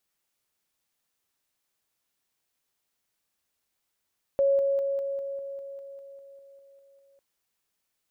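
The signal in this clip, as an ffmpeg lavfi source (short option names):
-f lavfi -i "aevalsrc='pow(10,(-19-3*floor(t/0.2))/20)*sin(2*PI*553*t)':d=2.8:s=44100"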